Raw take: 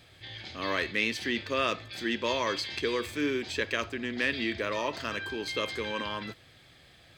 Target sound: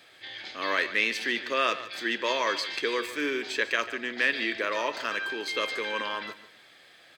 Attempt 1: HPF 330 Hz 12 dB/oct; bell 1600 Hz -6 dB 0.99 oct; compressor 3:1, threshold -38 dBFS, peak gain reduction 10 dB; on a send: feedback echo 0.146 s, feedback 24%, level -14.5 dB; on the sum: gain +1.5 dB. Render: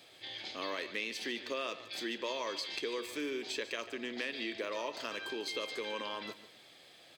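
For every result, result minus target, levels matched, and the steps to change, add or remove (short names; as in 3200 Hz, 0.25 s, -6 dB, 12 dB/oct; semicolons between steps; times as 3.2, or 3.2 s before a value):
compressor: peak gain reduction +10 dB; 2000 Hz band -3.0 dB
remove: compressor 3:1, threshold -38 dBFS, peak gain reduction 10 dB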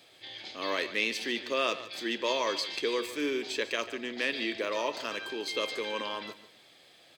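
2000 Hz band -3.5 dB
change: bell 1600 Hz +4 dB 0.99 oct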